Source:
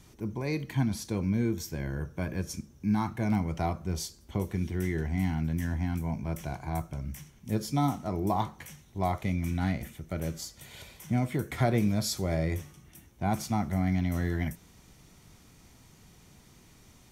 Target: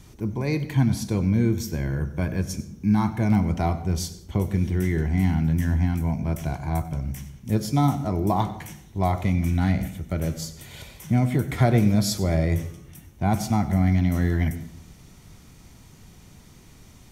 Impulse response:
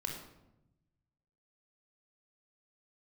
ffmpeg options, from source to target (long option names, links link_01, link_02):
-filter_complex "[0:a]lowshelf=frequency=170:gain=5,asplit=2[link_01][link_02];[1:a]atrim=start_sample=2205,asetrate=61740,aresample=44100,adelay=95[link_03];[link_02][link_03]afir=irnorm=-1:irlink=0,volume=-12.5dB[link_04];[link_01][link_04]amix=inputs=2:normalize=0,volume=4.5dB"